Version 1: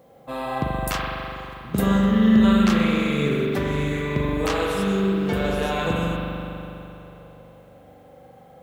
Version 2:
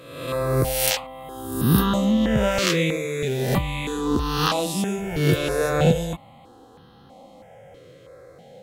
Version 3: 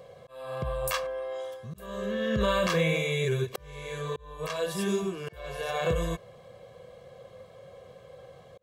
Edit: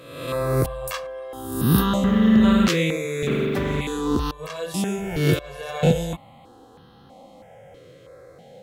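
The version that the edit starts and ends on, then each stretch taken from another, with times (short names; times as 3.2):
2
0.66–1.33 from 3
2.04–2.68 from 1
3.27–3.81 from 1
4.31–4.74 from 3
5.39–5.83 from 3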